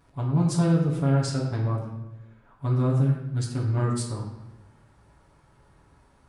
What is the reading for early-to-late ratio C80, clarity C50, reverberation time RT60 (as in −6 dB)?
6.5 dB, 4.0 dB, 1.0 s